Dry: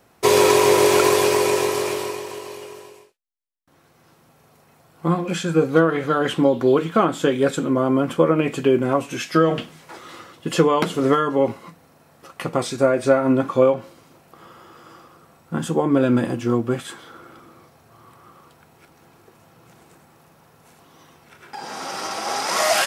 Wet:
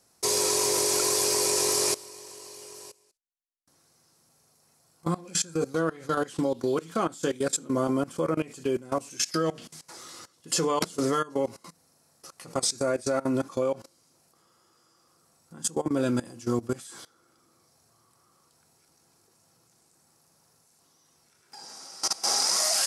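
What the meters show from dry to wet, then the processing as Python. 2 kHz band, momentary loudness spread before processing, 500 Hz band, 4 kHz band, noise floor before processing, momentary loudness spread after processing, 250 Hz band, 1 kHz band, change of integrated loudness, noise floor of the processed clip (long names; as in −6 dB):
−11.5 dB, 16 LU, −10.5 dB, −1.5 dB, −57 dBFS, 20 LU, −9.5 dB, −10.5 dB, −7.0 dB, −66 dBFS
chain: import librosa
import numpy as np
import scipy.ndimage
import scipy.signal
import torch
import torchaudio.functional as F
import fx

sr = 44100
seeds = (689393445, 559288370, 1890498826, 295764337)

y = fx.band_shelf(x, sr, hz=7100.0, db=15.5, octaves=1.7)
y = fx.level_steps(y, sr, step_db=20)
y = F.gain(torch.from_numpy(y), -5.0).numpy()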